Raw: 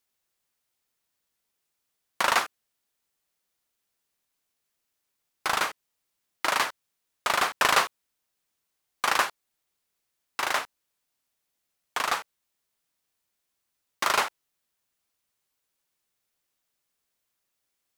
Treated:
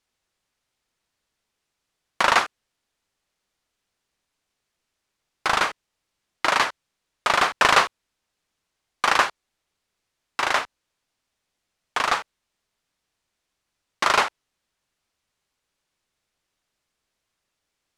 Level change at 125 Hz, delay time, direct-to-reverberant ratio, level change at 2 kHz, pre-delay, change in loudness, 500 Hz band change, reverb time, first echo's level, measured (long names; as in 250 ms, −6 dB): +7.0 dB, no echo audible, no reverb audible, +5.0 dB, no reverb audible, +4.5 dB, +5.5 dB, no reverb audible, no echo audible